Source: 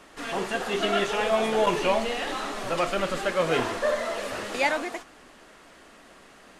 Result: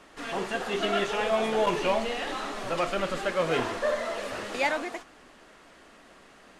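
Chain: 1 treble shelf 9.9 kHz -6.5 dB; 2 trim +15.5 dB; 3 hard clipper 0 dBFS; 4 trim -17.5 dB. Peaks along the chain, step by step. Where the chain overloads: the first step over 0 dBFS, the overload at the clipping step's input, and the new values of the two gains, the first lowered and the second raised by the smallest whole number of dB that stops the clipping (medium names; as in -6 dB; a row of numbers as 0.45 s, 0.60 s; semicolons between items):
-11.5 dBFS, +4.0 dBFS, 0.0 dBFS, -17.5 dBFS; step 2, 4.0 dB; step 2 +11.5 dB, step 4 -13.5 dB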